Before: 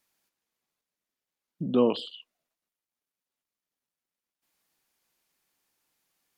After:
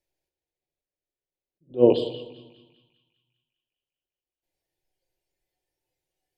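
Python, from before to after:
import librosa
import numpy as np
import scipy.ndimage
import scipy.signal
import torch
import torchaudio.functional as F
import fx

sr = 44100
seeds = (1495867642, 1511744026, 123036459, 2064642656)

y = fx.high_shelf(x, sr, hz=3300.0, db=-12.0)
y = fx.noise_reduce_blind(y, sr, reduce_db=10)
y = fx.low_shelf(y, sr, hz=320.0, db=10.5)
y = fx.fixed_phaser(y, sr, hz=500.0, stages=4)
y = fx.echo_banded(y, sr, ms=200, feedback_pct=65, hz=2000.0, wet_db=-13)
y = fx.room_shoebox(y, sr, seeds[0], volume_m3=4000.0, walls='furnished', distance_m=1.0)
y = fx.attack_slew(y, sr, db_per_s=300.0)
y = F.gain(torch.from_numpy(y), 7.0).numpy()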